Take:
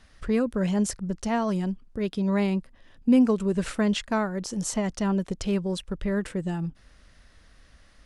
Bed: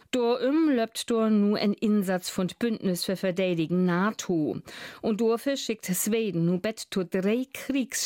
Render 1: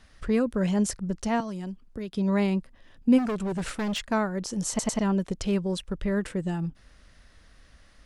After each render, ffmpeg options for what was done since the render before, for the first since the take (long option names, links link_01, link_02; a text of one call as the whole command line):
ffmpeg -i in.wav -filter_complex "[0:a]asettb=1/sr,asplit=3[link_01][link_02][link_03];[link_01]atrim=end=1.404[link_04];[link_02]atrim=start=1.4:end=2.14,asetpts=PTS-STARTPTS,afade=type=in:duration=0.004:curve=qsin,afade=type=out:start_time=0.736:duration=0.004:curve=qsin,acrossover=split=240|3500[link_05][link_06][link_07];[link_05]acompressor=threshold=-38dB:ratio=4[link_08];[link_06]acompressor=threshold=-38dB:ratio=4[link_09];[link_07]acompressor=threshold=-55dB:ratio=4[link_10];[link_08][link_09][link_10]amix=inputs=3:normalize=0[link_11];[link_03]atrim=start=2.136[link_12];[link_04][link_11]acrossfade=duration=0.004:curve1=hsin:curve2=qsin[link_13];[link_13][link_12]acrossfade=duration=0.004:curve1=qsin:curve2=hsin,asplit=3[link_14][link_15][link_16];[link_14]afade=type=out:start_time=3.17:duration=0.02[link_17];[link_15]asoftclip=type=hard:threshold=-26dB,afade=type=in:start_time=3.17:duration=0.02,afade=type=out:start_time=4.04:duration=0.02[link_18];[link_16]afade=type=in:start_time=4.04:duration=0.02[link_19];[link_17][link_18][link_19]amix=inputs=3:normalize=0,asplit=4[link_20][link_21][link_22][link_23];[link_20]atrim=end=4.792[link_24];[link_21]atrim=start=4.688:end=4.792[link_25];[link_22]atrim=start=4.688:end=4.792[link_26];[link_23]atrim=start=4.988[link_27];[link_24][link_25]acrossfade=duration=0.004:curve1=hsin:curve2=hsin[link_28];[link_28][link_26]acrossfade=duration=0.004:curve1=hsin:curve2=hsin[link_29];[link_29][link_27]acrossfade=duration=0.004:curve1=hsin:curve2=hsin" out.wav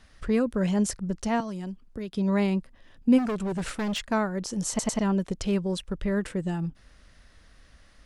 ffmpeg -i in.wav -af anull out.wav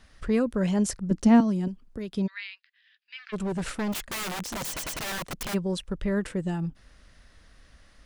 ffmpeg -i in.wav -filter_complex "[0:a]asettb=1/sr,asplit=3[link_01][link_02][link_03];[link_01]atrim=end=1.114[link_04];[link_02]atrim=start=1.11:end=1.68,asetpts=PTS-STARTPTS,afade=type=in:duration=0.004:curve=qsin,afade=type=out:start_time=0.566:duration=0.004:curve=qsin,equalizer=frequency=250:width=1.2:gain=12.5[link_05];[link_03]atrim=start=1.676[link_06];[link_04][link_05]acrossfade=duration=0.004:curve1=hsin:curve2=qsin[link_07];[link_07][link_06]acrossfade=duration=0.004:curve1=qsin:curve2=hsin,asplit=3[link_08][link_09][link_10];[link_08]afade=type=out:start_time=2.26:duration=0.02[link_11];[link_09]asuperpass=centerf=2800:order=8:qfactor=0.91,afade=type=in:start_time=2.26:duration=0.02,afade=type=out:start_time=3.32:duration=0.02[link_12];[link_10]afade=type=in:start_time=3.32:duration=0.02[link_13];[link_11][link_12][link_13]amix=inputs=3:normalize=0,asplit=3[link_14][link_15][link_16];[link_14]afade=type=out:start_time=3.92:duration=0.02[link_17];[link_15]aeval=exprs='(mod(25.1*val(0)+1,2)-1)/25.1':channel_layout=same,afade=type=in:start_time=3.92:duration=0.02,afade=type=out:start_time=5.53:duration=0.02[link_18];[link_16]afade=type=in:start_time=5.53:duration=0.02[link_19];[link_17][link_18][link_19]amix=inputs=3:normalize=0" out.wav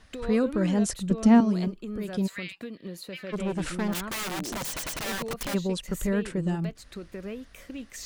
ffmpeg -i in.wav -i bed.wav -filter_complex "[1:a]volume=-12dB[link_01];[0:a][link_01]amix=inputs=2:normalize=0" out.wav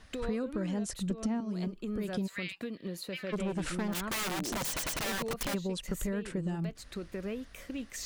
ffmpeg -i in.wav -af "acompressor=threshold=-30dB:ratio=10" out.wav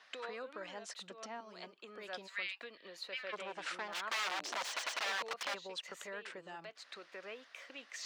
ffmpeg -i in.wav -filter_complex "[0:a]highpass=450,acrossover=split=590 5900:gain=0.224 1 0.0794[link_01][link_02][link_03];[link_01][link_02][link_03]amix=inputs=3:normalize=0" out.wav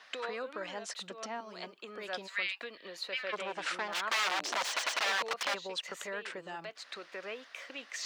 ffmpeg -i in.wav -af "volume=6dB" out.wav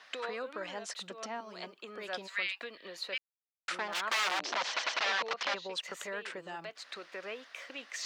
ffmpeg -i in.wav -filter_complex "[0:a]asettb=1/sr,asplit=3[link_01][link_02][link_03];[link_01]atrim=end=4.404[link_04];[link_02]atrim=start=4.4:end=5.72,asetpts=PTS-STARTPTS,afade=type=in:duration=0.004:curve=qsin,afade=type=out:start_time=1.316:duration=0.004:curve=qsin,lowpass=frequency=5900:width=0.5412,lowpass=frequency=5900:width=1.3066[link_05];[link_03]atrim=start=5.716[link_06];[link_04][link_05]acrossfade=duration=0.004:curve1=hsin:curve2=qsin[link_07];[link_07][link_06]acrossfade=duration=0.004:curve1=qsin:curve2=hsin,asplit=3[link_08][link_09][link_10];[link_08]atrim=end=3.18,asetpts=PTS-STARTPTS,afade=type=out:start_time=3.176:duration=0.004:curve=hsin[link_11];[link_09]atrim=start=3.18:end=3.68,asetpts=PTS-STARTPTS,volume=0[link_12];[link_10]atrim=start=3.68,asetpts=PTS-STARTPTS,afade=type=in:duration=0.004:curve=hsin[link_13];[link_11][link_12][link_13]concat=n=3:v=0:a=1" out.wav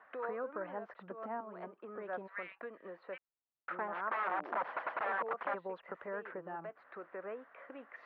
ffmpeg -i in.wav -af "lowpass=frequency=1500:width=0.5412,lowpass=frequency=1500:width=1.3066" out.wav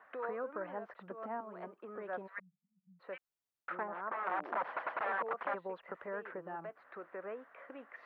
ffmpeg -i in.wav -filter_complex "[0:a]asplit=3[link_01][link_02][link_03];[link_01]afade=type=out:start_time=2.38:duration=0.02[link_04];[link_02]asuperpass=centerf=170:order=12:qfactor=3.1,afade=type=in:start_time=2.38:duration=0.02,afade=type=out:start_time=2.99:duration=0.02[link_05];[link_03]afade=type=in:start_time=2.99:duration=0.02[link_06];[link_04][link_05][link_06]amix=inputs=3:normalize=0,asettb=1/sr,asplit=3[link_07][link_08][link_09];[link_07]atrim=end=3.834[link_10];[link_08]atrim=start=3.83:end=4.27,asetpts=PTS-STARTPTS,afade=type=in:duration=0.004:curve=qsin,afade=type=out:start_time=0.436:duration=0.004:curve=qsin,lowpass=frequency=1100:poles=1[link_11];[link_09]atrim=start=4.266[link_12];[link_10][link_11]acrossfade=duration=0.004:curve1=hsin:curve2=qsin[link_13];[link_13][link_12]acrossfade=duration=0.004:curve1=qsin:curve2=hsin" out.wav